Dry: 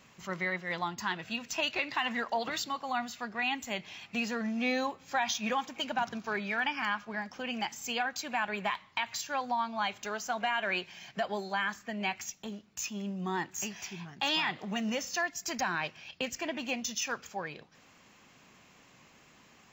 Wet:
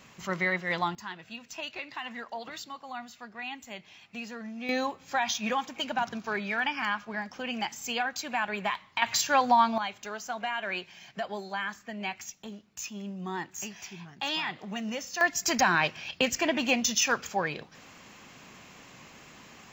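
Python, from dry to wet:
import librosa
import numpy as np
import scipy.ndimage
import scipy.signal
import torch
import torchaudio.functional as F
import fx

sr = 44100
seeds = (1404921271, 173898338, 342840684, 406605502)

y = fx.gain(x, sr, db=fx.steps((0.0, 5.0), (0.95, -6.5), (4.69, 2.0), (9.02, 10.0), (9.78, -1.5), (15.21, 8.5)))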